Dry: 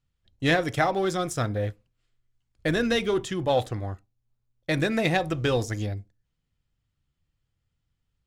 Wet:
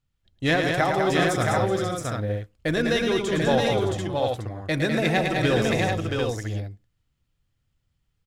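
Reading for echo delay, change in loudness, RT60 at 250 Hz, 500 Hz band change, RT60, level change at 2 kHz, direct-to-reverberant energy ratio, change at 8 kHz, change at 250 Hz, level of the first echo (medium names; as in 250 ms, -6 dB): 110 ms, +2.5 dB, no reverb, +4.0 dB, no reverb, +4.0 dB, no reverb, +4.0 dB, +3.5 dB, -6.0 dB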